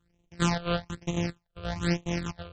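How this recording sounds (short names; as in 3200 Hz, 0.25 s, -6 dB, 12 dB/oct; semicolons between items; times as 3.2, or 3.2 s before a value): a buzz of ramps at a fixed pitch in blocks of 256 samples; phasing stages 8, 1.1 Hz, lowest notch 250–1500 Hz; MP3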